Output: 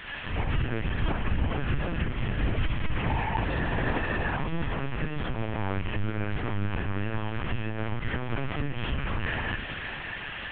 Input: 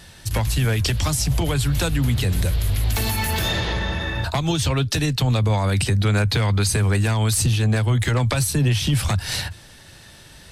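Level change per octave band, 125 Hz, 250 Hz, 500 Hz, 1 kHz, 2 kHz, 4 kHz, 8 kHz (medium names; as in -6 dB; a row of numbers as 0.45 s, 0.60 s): -12.0 dB, -7.5 dB, -7.5 dB, -4.5 dB, -4.0 dB, -14.0 dB, under -40 dB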